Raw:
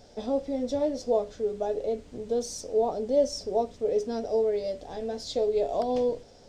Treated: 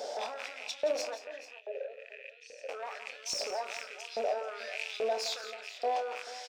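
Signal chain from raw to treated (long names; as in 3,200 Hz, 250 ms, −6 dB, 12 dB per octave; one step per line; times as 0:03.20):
loose part that buzzes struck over −51 dBFS, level −34 dBFS
high-pass filter 200 Hz 12 dB per octave
mains-hum notches 50/100/150/200/250/300/350/400/450/500 Hz
in parallel at +2 dB: compressor whose output falls as the input rises −39 dBFS
on the sum: brickwall limiter −25.5 dBFS, peak gain reduction 12 dB
0:01.15–0:02.69: formant filter e
soft clipping −28.5 dBFS, distortion −18 dB
auto-filter high-pass saw up 1.2 Hz 480–3,900 Hz
double-tracking delay 27 ms −11.5 dB
multi-tap delay 171/437 ms −12.5/−15.5 dB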